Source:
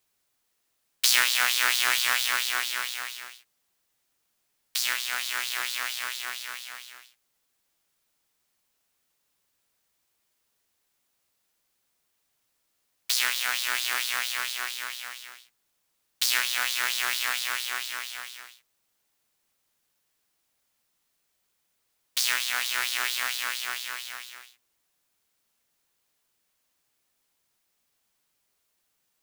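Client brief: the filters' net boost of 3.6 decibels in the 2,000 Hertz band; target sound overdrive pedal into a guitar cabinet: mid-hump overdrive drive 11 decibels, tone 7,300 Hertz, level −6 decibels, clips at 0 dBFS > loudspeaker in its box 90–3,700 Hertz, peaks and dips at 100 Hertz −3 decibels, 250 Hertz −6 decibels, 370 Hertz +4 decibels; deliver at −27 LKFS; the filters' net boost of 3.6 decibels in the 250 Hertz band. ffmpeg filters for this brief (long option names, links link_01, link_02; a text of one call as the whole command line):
ffmpeg -i in.wav -filter_complex "[0:a]equalizer=frequency=250:width_type=o:gain=5.5,equalizer=frequency=2000:width_type=o:gain=4.5,asplit=2[link_01][link_02];[link_02]highpass=frequency=720:poles=1,volume=11dB,asoftclip=type=tanh:threshold=0dB[link_03];[link_01][link_03]amix=inputs=2:normalize=0,lowpass=frequency=7300:poles=1,volume=-6dB,highpass=90,equalizer=frequency=100:width_type=q:width=4:gain=-3,equalizer=frequency=250:width_type=q:width=4:gain=-6,equalizer=frequency=370:width_type=q:width=4:gain=4,lowpass=frequency=3700:width=0.5412,lowpass=frequency=3700:width=1.3066,volume=-6.5dB" out.wav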